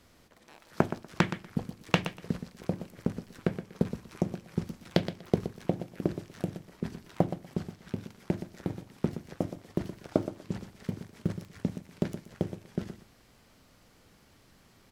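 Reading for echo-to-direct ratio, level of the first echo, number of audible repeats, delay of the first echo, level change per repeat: −11.0 dB, −11.0 dB, 2, 121 ms, −15.0 dB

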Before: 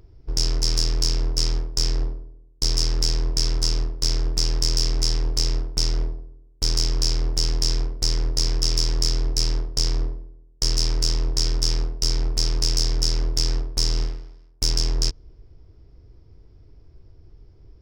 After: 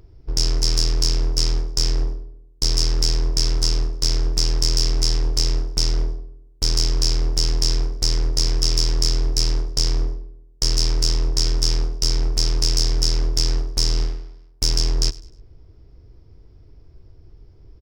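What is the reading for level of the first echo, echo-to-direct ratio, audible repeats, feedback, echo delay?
−21.0 dB, −20.5 dB, 2, 34%, 101 ms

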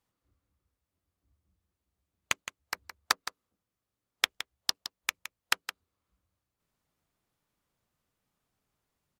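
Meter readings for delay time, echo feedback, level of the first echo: 166 ms, repeats not evenly spaced, −11.5 dB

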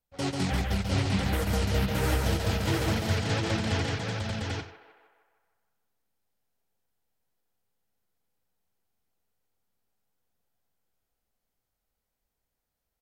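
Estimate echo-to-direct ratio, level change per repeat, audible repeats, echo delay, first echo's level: 1.0 dB, repeats not evenly spaced, 6, 90 ms, −15.5 dB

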